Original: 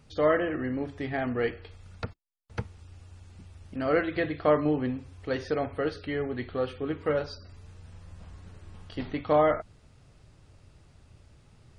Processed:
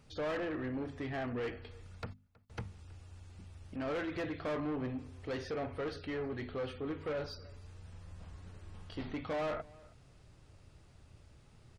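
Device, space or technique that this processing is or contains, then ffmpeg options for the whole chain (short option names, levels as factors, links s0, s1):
saturation between pre-emphasis and de-emphasis: -filter_complex "[0:a]highshelf=f=4200:g=11,bandreject=f=50:t=h:w=6,bandreject=f=100:t=h:w=6,bandreject=f=150:t=h:w=6,bandreject=f=200:t=h:w=6,bandreject=f=250:t=h:w=6,asoftclip=type=tanh:threshold=0.0316,highshelf=f=4200:g=-11,asplit=2[s0][s1];[s1]adelay=320.7,volume=0.0708,highshelf=f=4000:g=-7.22[s2];[s0][s2]amix=inputs=2:normalize=0,volume=0.708"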